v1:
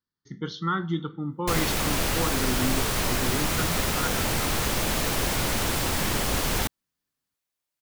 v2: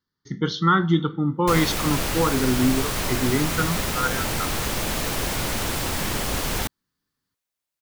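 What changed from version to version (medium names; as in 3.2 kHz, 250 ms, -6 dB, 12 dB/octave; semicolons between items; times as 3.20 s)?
speech +8.5 dB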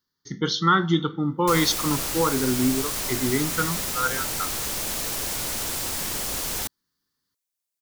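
background -6.5 dB; master: add tone controls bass -4 dB, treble +9 dB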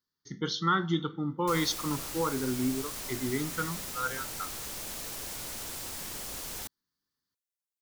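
speech -7.5 dB; background -10.5 dB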